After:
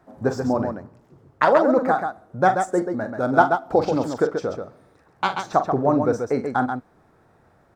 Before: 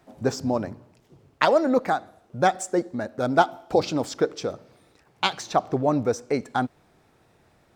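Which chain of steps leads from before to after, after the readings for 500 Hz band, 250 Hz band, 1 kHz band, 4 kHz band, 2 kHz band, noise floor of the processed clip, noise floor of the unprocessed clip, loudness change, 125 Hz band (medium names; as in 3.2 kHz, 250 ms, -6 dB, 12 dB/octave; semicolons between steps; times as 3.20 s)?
+3.5 dB, +3.0 dB, +4.0 dB, -7.0 dB, +3.0 dB, -58 dBFS, -62 dBFS, +3.0 dB, +2.5 dB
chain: resonant high shelf 2 kHz -8 dB, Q 1.5; loudspeakers at several distances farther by 15 m -10 dB, 46 m -6 dB; trim +1.5 dB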